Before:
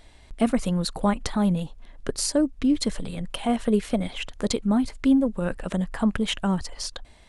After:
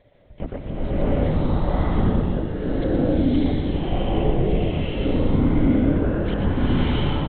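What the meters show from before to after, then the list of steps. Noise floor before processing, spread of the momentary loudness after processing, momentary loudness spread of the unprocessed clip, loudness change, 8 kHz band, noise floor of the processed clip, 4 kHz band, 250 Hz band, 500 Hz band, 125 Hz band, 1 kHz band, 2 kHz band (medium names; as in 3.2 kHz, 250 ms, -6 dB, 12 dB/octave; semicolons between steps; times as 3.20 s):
-51 dBFS, 7 LU, 11 LU, +3.0 dB, under -40 dB, -43 dBFS, -3.5 dB, +1.5 dB, +4.0 dB, +9.5 dB, +1.5 dB, +1.0 dB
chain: treble shelf 2.5 kHz -9 dB; whistle 570 Hz -54 dBFS; delay 121 ms -6 dB; LPC vocoder at 8 kHz whisper; swelling reverb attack 710 ms, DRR -11.5 dB; trim -8 dB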